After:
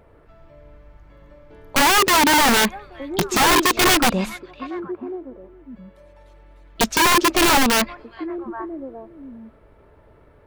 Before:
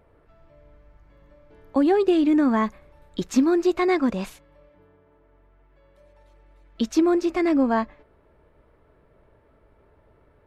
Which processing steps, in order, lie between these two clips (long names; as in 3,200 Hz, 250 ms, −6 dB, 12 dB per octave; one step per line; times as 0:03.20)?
echo through a band-pass that steps 412 ms, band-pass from 3,100 Hz, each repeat −1.4 octaves, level −9 dB
wrap-around overflow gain 17.5 dB
level +6.5 dB